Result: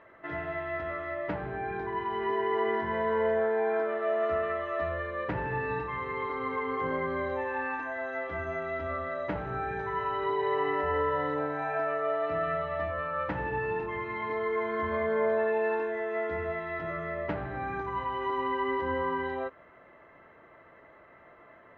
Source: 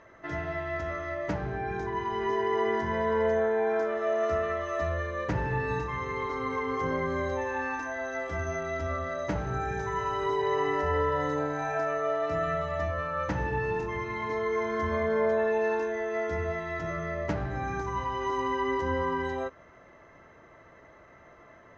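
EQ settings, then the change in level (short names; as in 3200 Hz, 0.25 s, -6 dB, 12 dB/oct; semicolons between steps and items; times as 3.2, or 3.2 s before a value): LPF 3500 Hz 24 dB/oct; air absorption 50 m; low shelf 160 Hz -9.5 dB; 0.0 dB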